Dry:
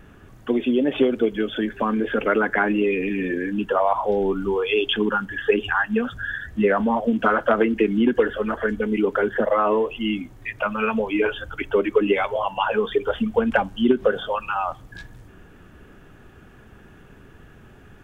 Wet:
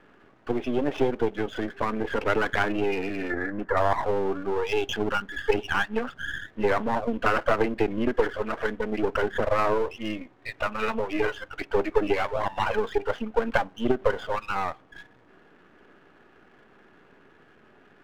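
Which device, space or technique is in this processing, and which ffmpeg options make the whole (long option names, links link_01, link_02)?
crystal radio: -filter_complex "[0:a]highpass=290,lowpass=2500,aeval=exprs='if(lt(val(0),0),0.251*val(0),val(0))':channel_layout=same,asettb=1/sr,asplit=3[link_01][link_02][link_03];[link_01]atrim=end=3.304[link_04];[link_02]atrim=start=3.3:end=3.77,asetpts=PTS-STARTPTS,afade=type=in:duration=0.004:curve=qsin,afade=type=out:start_time=0.466:duration=0.004:curve=qsin,highshelf=frequency=2200:width_type=q:width=3:gain=-7[link_05];[link_03]atrim=start=3.766[link_06];[link_04][link_05]acrossfade=duration=0.004:curve1=hsin:curve2=qsin[link_07];[link_07][link_06]acrossfade=duration=0.004:curve1=qsin:curve2=hsin"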